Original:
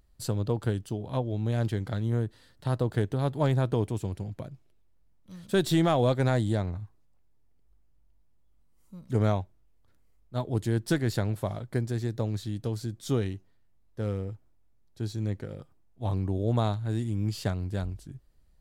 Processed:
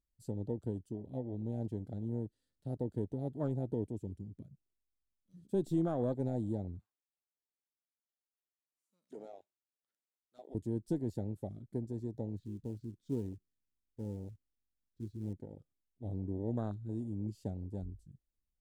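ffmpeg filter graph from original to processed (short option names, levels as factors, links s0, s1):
-filter_complex "[0:a]asettb=1/sr,asplit=3[s0][s1][s2];[s0]atrim=end=6.794[s3];[s1]atrim=start=6.79:end=10.55,asetpts=PTS-STARTPTS,afade=t=in:d=0.004:c=qsin,afade=t=out:st=3.756:d=0.004:c=qsin,highpass=f=1200:p=1,acompressor=threshold=0.01:ratio=2:attack=3.2:release=140:knee=1:detection=peak,asplit=2[s4][s5];[s5]highpass=f=720:p=1,volume=7.94,asoftclip=type=tanh:threshold=0.0708[s6];[s4][s6]amix=inputs=2:normalize=0,lowpass=f=3100:p=1,volume=0.501[s7];[s2]atrim=start=10.546[s8];[s3][s7]acrossfade=d=0.004:c1=hsin:c2=qsin[s9];[s9][s8]acrossfade=d=0.004:c1=qsin:c2=hsin,asettb=1/sr,asplit=3[s10][s11][s12];[s10]atrim=end=12.374[s13];[s11]atrim=start=12.37:end=15.33,asetpts=PTS-STARTPTS,afade=t=in:d=0.004:c=qsin,afade=t=out:st=2.956:d=0.004:c=qsin,lowpass=3300,acrusher=bits=3:mode=log:mix=0:aa=0.000001,equalizer=f=680:w=1.8:g=-10.5[s14];[s12]atrim=start=15.326[s15];[s13][s14]acrossfade=d=0.004:c1=hsin:c2=qsin[s16];[s16][s15]acrossfade=d=0.004:c1=qsin:c2=hsin,equalizer=f=125:t=o:w=1:g=-5,equalizer=f=250:t=o:w=1:g=4,equalizer=f=1000:t=o:w=1:g=-9,equalizer=f=2000:t=o:w=1:g=-5,equalizer=f=4000:t=o:w=1:g=-3,equalizer=f=8000:t=o:w=1:g=5,afwtdn=0.0251,volume=0.398"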